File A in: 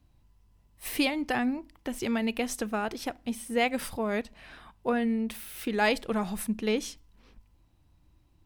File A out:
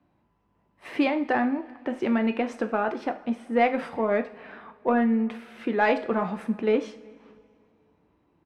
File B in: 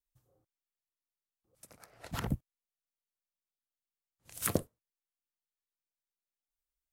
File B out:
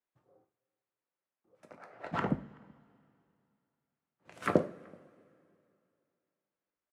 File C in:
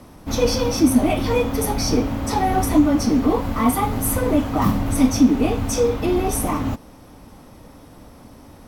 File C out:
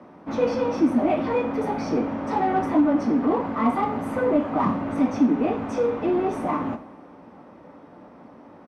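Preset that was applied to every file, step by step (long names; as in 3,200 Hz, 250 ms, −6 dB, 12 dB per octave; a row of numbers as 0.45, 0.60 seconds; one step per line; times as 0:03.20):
high-pass filter 46 Hz
three-way crossover with the lows and the highs turned down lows −21 dB, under 170 Hz, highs −19 dB, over 2,200 Hz
in parallel at −6 dB: soft clipping −23 dBFS
on the sum: low-pass filter 6,000 Hz 12 dB per octave
slap from a distant wall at 65 metres, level −29 dB
coupled-rooms reverb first 0.4 s, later 2.6 s, from −21 dB, DRR 6.5 dB
normalise the peak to −9 dBFS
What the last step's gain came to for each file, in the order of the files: +2.5, +4.0, −4.0 decibels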